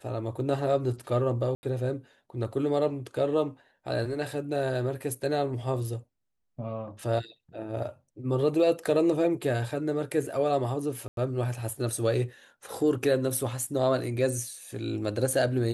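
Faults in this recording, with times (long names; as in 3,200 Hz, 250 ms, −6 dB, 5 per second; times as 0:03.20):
0:01.55–0:01.63: drop-out 80 ms
0:11.08–0:11.17: drop-out 92 ms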